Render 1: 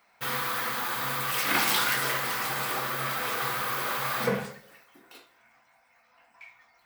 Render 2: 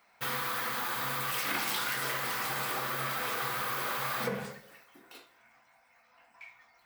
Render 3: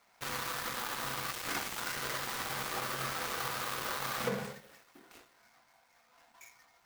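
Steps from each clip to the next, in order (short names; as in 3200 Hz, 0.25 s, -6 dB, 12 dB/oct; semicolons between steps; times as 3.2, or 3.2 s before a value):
compressor 4:1, threshold -29 dBFS, peak gain reduction 7.5 dB; gain -1 dB
switching dead time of 0.14 ms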